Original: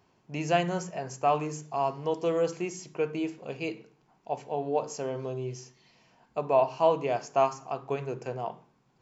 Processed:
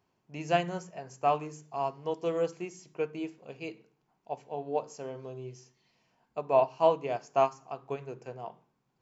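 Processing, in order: upward expander 1.5:1, over -37 dBFS

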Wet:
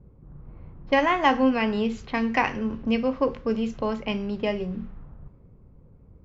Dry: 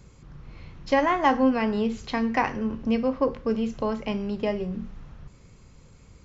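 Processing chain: low-pass opened by the level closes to 540 Hz, open at -22.5 dBFS; dynamic EQ 2700 Hz, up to +7 dB, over -44 dBFS, Q 1.6

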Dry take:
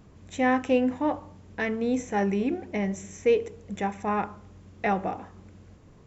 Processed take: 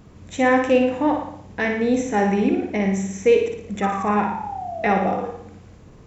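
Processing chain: on a send at -13.5 dB: reverb RT60 0.40 s, pre-delay 78 ms; on the sum: painted sound fall, 3.82–5.3, 460–1300 Hz -37 dBFS; flutter echo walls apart 9.8 m, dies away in 0.63 s; gain +5.5 dB

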